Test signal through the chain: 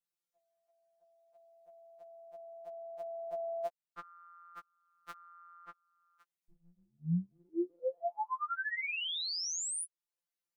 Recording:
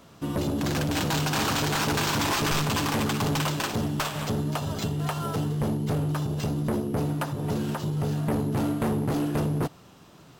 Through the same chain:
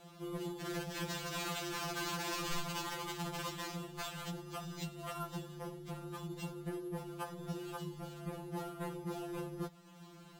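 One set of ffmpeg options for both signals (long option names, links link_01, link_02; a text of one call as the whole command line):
ffmpeg -i in.wav -af "acompressor=threshold=-46dB:ratio=1.5,afftfilt=real='re*2.83*eq(mod(b,8),0)':imag='im*2.83*eq(mod(b,8),0)':win_size=2048:overlap=0.75,volume=-2.5dB" out.wav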